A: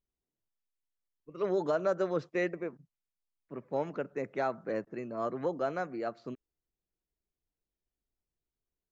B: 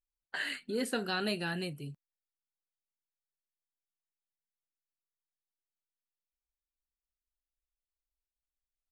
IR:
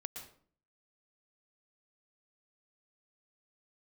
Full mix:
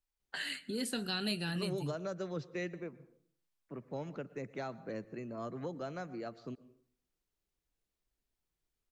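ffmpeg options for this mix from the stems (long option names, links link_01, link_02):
-filter_complex "[0:a]adelay=200,volume=0dB,asplit=2[link_01][link_02];[link_02]volume=-11.5dB[link_03];[1:a]volume=2.5dB,asplit=2[link_04][link_05];[link_05]volume=-15.5dB[link_06];[2:a]atrim=start_sample=2205[link_07];[link_03][link_06]amix=inputs=2:normalize=0[link_08];[link_08][link_07]afir=irnorm=-1:irlink=0[link_09];[link_01][link_04][link_09]amix=inputs=3:normalize=0,highshelf=frequency=9000:gain=-4.5,acrossover=split=210|3000[link_10][link_11][link_12];[link_11]acompressor=threshold=-49dB:ratio=2[link_13];[link_10][link_13][link_12]amix=inputs=3:normalize=0"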